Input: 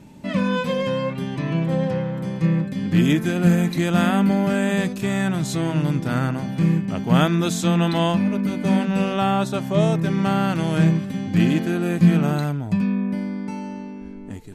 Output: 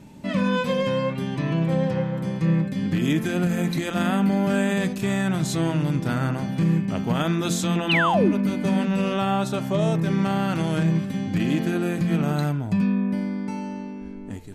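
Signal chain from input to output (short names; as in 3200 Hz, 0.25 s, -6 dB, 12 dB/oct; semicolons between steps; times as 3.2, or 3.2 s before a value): limiter -13 dBFS, peak gain reduction 8 dB; de-hum 85.94 Hz, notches 37; painted sound fall, 7.89–8.33, 250–3200 Hz -21 dBFS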